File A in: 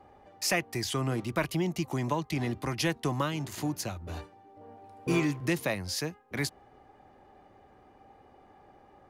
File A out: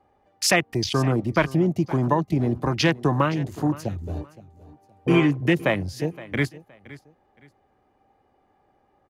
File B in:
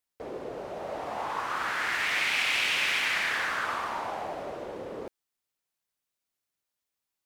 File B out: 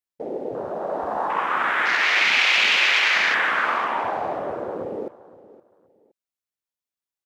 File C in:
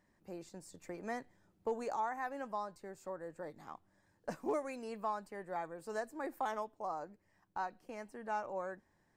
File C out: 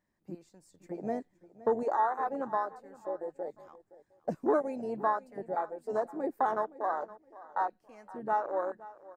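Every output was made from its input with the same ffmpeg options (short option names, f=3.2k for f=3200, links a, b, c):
-af "afwtdn=0.0158,aecho=1:1:518|1036:0.119|0.0321,volume=9dB"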